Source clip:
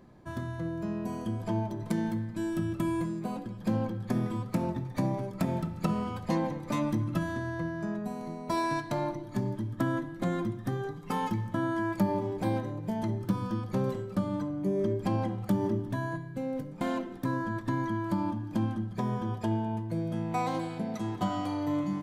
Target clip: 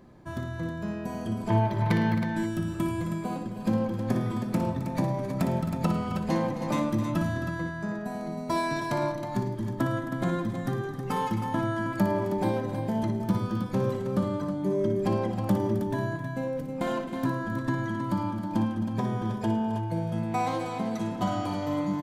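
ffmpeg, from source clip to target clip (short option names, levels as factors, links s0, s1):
-filter_complex "[0:a]asettb=1/sr,asplit=3[s0][s1][s2];[s0]atrim=end=1.504[s3];[s1]atrim=start=1.5:end=2.15,asetpts=PTS-STARTPTS,afade=t=in:d=0.004:c=qsin,afade=t=out:st=0.646:d=0.004:c=qsin,equalizer=f=125:t=o:w=1:g=9,equalizer=f=250:t=o:w=1:g=-3,equalizer=f=500:t=o:w=1:g=4,equalizer=f=1000:t=o:w=1:g=5,equalizer=f=2000:t=o:w=1:g=11,equalizer=f=4000:t=o:w=1:g=6,equalizer=f=8000:t=o:w=1:g=-9[s4];[s2]atrim=start=2.146[s5];[s3][s4]acrossfade=d=0.004:c1=hsin:c2=qsin[s6];[s6][s5]acrossfade=d=0.004:c1=qsin:c2=hsin,asplit=2[s7][s8];[s8]aecho=0:1:59|108|265|318:0.376|0.141|0.224|0.398[s9];[s7][s9]amix=inputs=2:normalize=0,volume=1.26"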